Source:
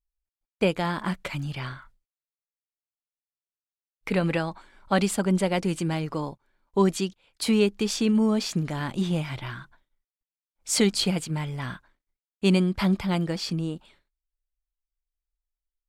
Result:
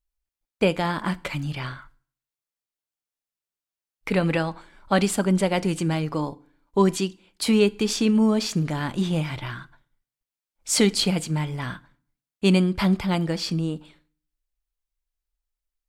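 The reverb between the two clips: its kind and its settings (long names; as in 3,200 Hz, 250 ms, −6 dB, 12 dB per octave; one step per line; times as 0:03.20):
feedback delay network reverb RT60 0.48 s, low-frequency decay 1.25×, high-frequency decay 0.85×, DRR 16.5 dB
level +2.5 dB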